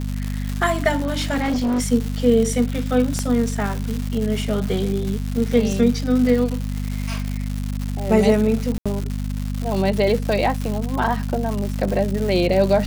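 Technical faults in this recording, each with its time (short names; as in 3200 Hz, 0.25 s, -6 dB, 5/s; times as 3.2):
crackle 280/s -24 dBFS
hum 50 Hz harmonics 5 -25 dBFS
0.98–1.86 clipped -17.5 dBFS
3.19 pop -10 dBFS
8.78–8.86 gap 76 ms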